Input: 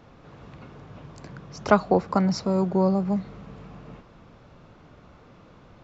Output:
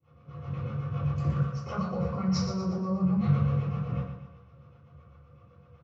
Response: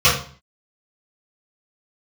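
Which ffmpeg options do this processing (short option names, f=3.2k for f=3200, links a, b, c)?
-filter_complex "[0:a]agate=range=-33dB:threshold=-37dB:ratio=3:detection=peak,highshelf=f=3k:g=-11,areverse,acompressor=threshold=-31dB:ratio=20,areverse,alimiter=level_in=11dB:limit=-24dB:level=0:latency=1:release=24,volume=-11dB,acrossover=split=520[a][b];[a]aeval=exprs='val(0)*(1-0.7/2+0.7/2*cos(2*PI*7.9*n/s))':c=same[c];[b]aeval=exprs='val(0)*(1-0.7/2-0.7/2*cos(2*PI*7.9*n/s))':c=same[d];[c][d]amix=inputs=2:normalize=0,aecho=1:1:119|238|357|476|595:0.398|0.187|0.0879|0.0413|0.0194[e];[1:a]atrim=start_sample=2205,afade=t=out:st=0.15:d=0.01,atrim=end_sample=7056[f];[e][f]afir=irnorm=-1:irlink=0,volume=-7dB"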